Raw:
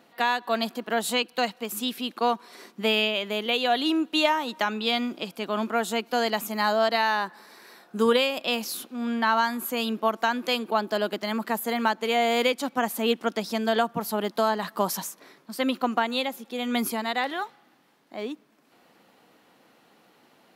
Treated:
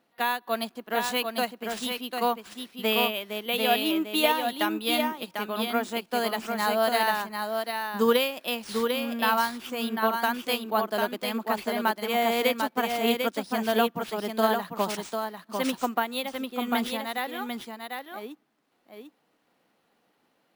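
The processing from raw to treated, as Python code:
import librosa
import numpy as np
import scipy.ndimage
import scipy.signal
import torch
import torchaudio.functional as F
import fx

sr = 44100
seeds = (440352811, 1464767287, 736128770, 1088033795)

p1 = x + fx.echo_single(x, sr, ms=747, db=-3.5, dry=0)
p2 = np.repeat(p1[::3], 3)[:len(p1)]
y = fx.upward_expand(p2, sr, threshold_db=-42.0, expansion=1.5)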